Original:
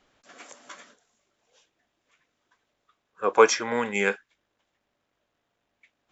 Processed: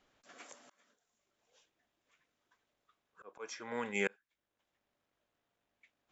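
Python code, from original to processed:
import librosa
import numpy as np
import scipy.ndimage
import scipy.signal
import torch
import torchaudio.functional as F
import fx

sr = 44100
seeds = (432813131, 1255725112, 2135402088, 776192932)

y = fx.auto_swell(x, sr, attack_ms=710.0)
y = y * 10.0 ** (-7.0 / 20.0)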